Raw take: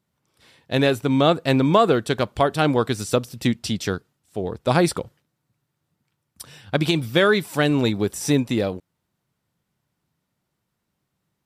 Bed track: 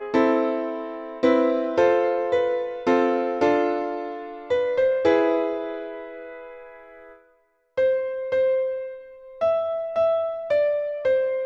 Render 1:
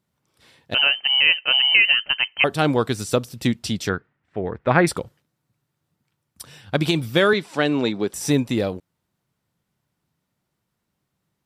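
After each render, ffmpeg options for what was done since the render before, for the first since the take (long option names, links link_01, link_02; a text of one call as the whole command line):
ffmpeg -i in.wav -filter_complex "[0:a]asettb=1/sr,asplit=3[link_01][link_02][link_03];[link_01]atrim=end=0.744[link_04];[link_02]atrim=start=0.74:end=2.44,asetpts=PTS-STARTPTS,afade=type=in:duration=0.004:curve=qsin,afade=type=out:start_time=1.696:duration=0.004:curve=qsin,lowpass=frequency=2700:width_type=q:width=0.5098,lowpass=frequency=2700:width_type=q:width=0.6013,lowpass=frequency=2700:width_type=q:width=0.9,lowpass=frequency=2700:width_type=q:width=2.563,afreqshift=-3200[link_05];[link_03]atrim=start=2.436[link_06];[link_04][link_05]acrossfade=duration=0.004:curve1=hsin:curve2=qsin[link_07];[link_07][link_06]acrossfade=duration=0.004:curve1=qsin:curve2=hsin,asettb=1/sr,asplit=3[link_08][link_09][link_10];[link_08]atrim=end=3.894[link_11];[link_09]atrim=start=3.89:end=4.87,asetpts=PTS-STARTPTS,afade=type=in:duration=0.004:curve=qsin,afade=type=out:start_time=0.976:duration=0.004:curve=qsin,lowpass=frequency=1900:width_type=q:width=2.7[link_12];[link_10]atrim=start=4.866[link_13];[link_11][link_12]acrossfade=duration=0.004:curve1=hsin:curve2=qsin[link_14];[link_14][link_13]acrossfade=duration=0.004:curve1=qsin:curve2=hsin,asettb=1/sr,asplit=3[link_15][link_16][link_17];[link_15]atrim=end=7.334[link_18];[link_16]atrim=start=7.33:end=8.14,asetpts=PTS-STARTPTS,afade=type=in:duration=0.004:curve=qsin,afade=type=out:start_time=0.806:duration=0.004:curve=qsin,highpass=200,lowpass=5600[link_19];[link_17]atrim=start=8.136[link_20];[link_18][link_19]acrossfade=duration=0.004:curve1=hsin:curve2=qsin[link_21];[link_21][link_20]acrossfade=duration=0.004:curve1=qsin:curve2=hsin" out.wav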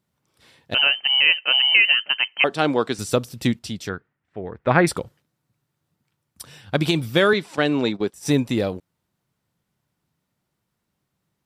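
ffmpeg -i in.wav -filter_complex "[0:a]asettb=1/sr,asplit=3[link_01][link_02][link_03];[link_01]atrim=end=1.224[link_04];[link_02]atrim=start=1.22:end=2.99,asetpts=PTS-STARTPTS,afade=type=in:duration=0.004:curve=qsin,afade=type=out:start_time=1.766:duration=0.004:curve=qsin,highpass=210,lowpass=7100[link_05];[link_03]atrim=start=2.986[link_06];[link_04][link_05]acrossfade=duration=0.004:curve1=hsin:curve2=qsin[link_07];[link_07][link_06]acrossfade=duration=0.004:curve1=qsin:curve2=hsin,asplit=3[link_08][link_09][link_10];[link_08]afade=type=out:start_time=7.55:duration=0.02[link_11];[link_09]agate=range=-14dB:threshold=-30dB:ratio=16:release=100:detection=peak,afade=type=in:start_time=7.55:duration=0.02,afade=type=out:start_time=8.33:duration=0.02[link_12];[link_10]afade=type=in:start_time=8.33:duration=0.02[link_13];[link_11][link_12][link_13]amix=inputs=3:normalize=0,asplit=3[link_14][link_15][link_16];[link_14]atrim=end=3.592[link_17];[link_15]atrim=start=3.588:end=4.652,asetpts=PTS-STARTPTS,volume=-5.5dB[link_18];[link_16]atrim=start=4.648[link_19];[link_17][link_18]acrossfade=duration=0.004:curve1=hsin:curve2=hsin[link_20];[link_20][link_19]acrossfade=duration=0.004:curve1=hsin:curve2=hsin" out.wav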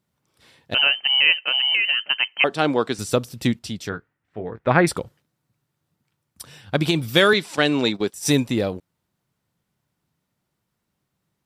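ffmpeg -i in.wav -filter_complex "[0:a]asettb=1/sr,asplit=3[link_01][link_02][link_03];[link_01]atrim=end=1.404[link_04];[link_02]atrim=start=1.4:end=2.06,asetpts=PTS-STARTPTS,afade=type=in:duration=0.004:curve=qsin,afade=type=out:start_time=0.656:duration=0.004:curve=qsin,acompressor=threshold=-17dB:ratio=3:attack=3.2:release=140:knee=1:detection=peak[link_05];[link_03]atrim=start=2.056[link_06];[link_04][link_05]acrossfade=duration=0.004:curve1=hsin:curve2=qsin[link_07];[link_07][link_06]acrossfade=duration=0.004:curve1=qsin:curve2=hsin,asettb=1/sr,asplit=3[link_08][link_09][link_10];[link_08]atrim=end=3.904[link_11];[link_09]atrim=start=3.9:end=4.59,asetpts=PTS-STARTPTS,afade=type=in:duration=0.004:curve=qsin,afade=type=out:start_time=0.686:duration=0.004:curve=qsin,asplit=2[link_12][link_13];[link_13]adelay=18,volume=-6.5dB[link_14];[link_12][link_14]amix=inputs=2:normalize=0,atrim=end_sample=30429[link_15];[link_10]atrim=start=4.586[link_16];[link_11][link_15]acrossfade=duration=0.004:curve1=hsin:curve2=qsin[link_17];[link_17][link_16]acrossfade=duration=0.004:curve1=qsin:curve2=hsin,asettb=1/sr,asplit=3[link_18][link_19][link_20];[link_18]atrim=end=7.084[link_21];[link_19]atrim=start=7.08:end=8.47,asetpts=PTS-STARTPTS,afade=type=in:duration=0.004:curve=qsin,afade=type=out:start_time=1.386:duration=0.004:curve=qsin,highshelf=frequency=2500:gain=8.5[link_22];[link_20]atrim=start=8.466[link_23];[link_21][link_22]acrossfade=duration=0.004:curve1=hsin:curve2=qsin[link_24];[link_24][link_23]acrossfade=duration=0.004:curve1=qsin:curve2=hsin" out.wav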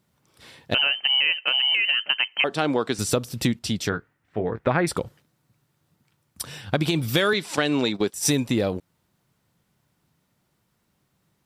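ffmpeg -i in.wav -filter_complex "[0:a]asplit=2[link_01][link_02];[link_02]alimiter=limit=-11dB:level=0:latency=1:release=82,volume=0.5dB[link_03];[link_01][link_03]amix=inputs=2:normalize=0,acompressor=threshold=-21dB:ratio=3" out.wav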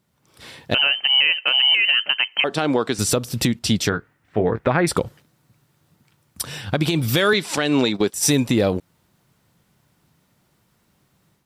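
ffmpeg -i in.wav -af "alimiter=limit=-14.5dB:level=0:latency=1:release=215,dynaudnorm=framelen=180:gausssize=3:maxgain=7dB" out.wav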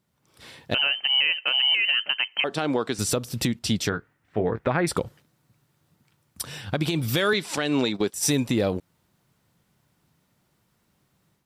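ffmpeg -i in.wav -af "volume=-5dB" out.wav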